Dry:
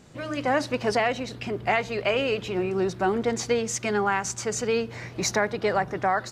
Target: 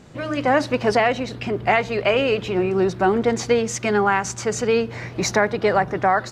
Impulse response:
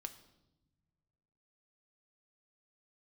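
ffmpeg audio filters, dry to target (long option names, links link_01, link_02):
-af "highshelf=frequency=4700:gain=-7,volume=6dB"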